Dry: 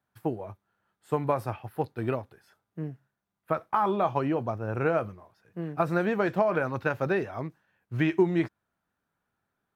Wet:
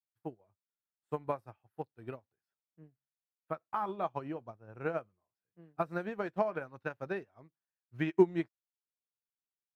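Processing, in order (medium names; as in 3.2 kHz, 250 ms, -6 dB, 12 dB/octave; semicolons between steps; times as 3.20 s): upward expansion 2.5:1, over -39 dBFS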